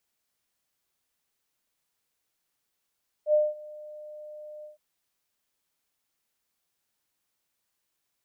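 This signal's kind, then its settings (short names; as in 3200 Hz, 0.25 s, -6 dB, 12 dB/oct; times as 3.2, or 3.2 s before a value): ADSR sine 604 Hz, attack 76 ms, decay 0.204 s, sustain -23 dB, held 1.38 s, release 0.134 s -17 dBFS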